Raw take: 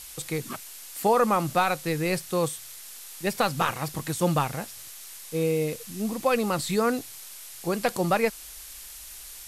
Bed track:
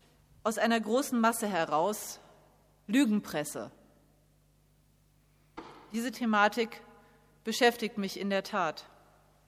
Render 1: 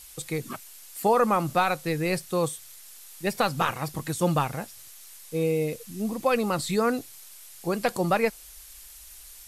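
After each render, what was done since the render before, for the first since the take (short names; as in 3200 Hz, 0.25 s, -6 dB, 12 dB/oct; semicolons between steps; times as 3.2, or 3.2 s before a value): denoiser 6 dB, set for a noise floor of -43 dBFS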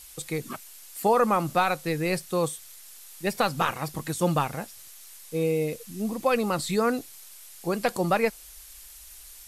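bell 120 Hz -4.5 dB 0.38 oct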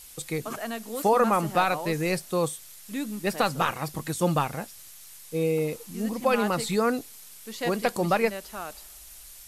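add bed track -6.5 dB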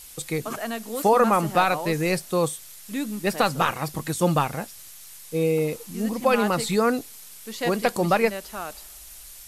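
gain +3 dB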